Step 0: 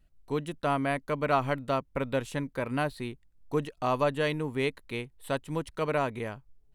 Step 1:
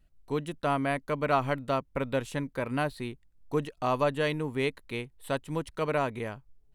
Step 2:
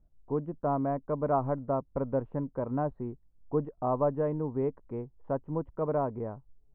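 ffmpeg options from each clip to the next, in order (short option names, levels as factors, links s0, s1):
-af anull
-af "lowpass=f=1000:w=0.5412,lowpass=f=1000:w=1.3066"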